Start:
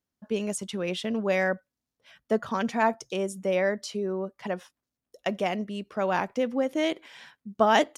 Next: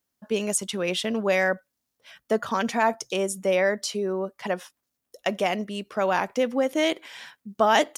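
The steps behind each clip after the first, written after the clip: bass shelf 300 Hz -7 dB; in parallel at +1 dB: peak limiter -20 dBFS, peak gain reduction 11.5 dB; on the sum: treble shelf 8.3 kHz +7.5 dB; trim -1 dB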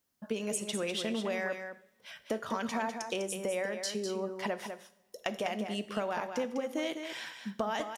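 compression 6:1, threshold -32 dBFS, peak gain reduction 16 dB; delay 201 ms -7.5 dB; two-slope reverb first 0.61 s, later 2.9 s, from -25 dB, DRR 11.5 dB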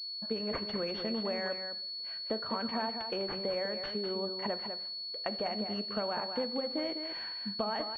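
class-D stage that switches slowly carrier 4.4 kHz; trim -1 dB

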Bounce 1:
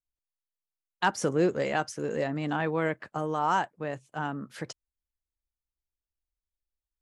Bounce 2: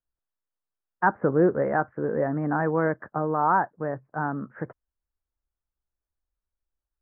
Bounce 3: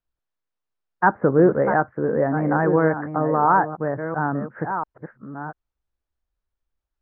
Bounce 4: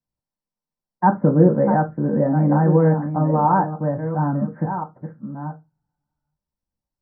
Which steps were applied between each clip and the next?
steep low-pass 1.7 kHz 48 dB/octave; trim +4.5 dB
chunks repeated in reverse 691 ms, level -9 dB; distance through air 130 m; trim +5 dB
reverberation RT60 0.20 s, pre-delay 3 ms, DRR 2 dB; trim -9.5 dB

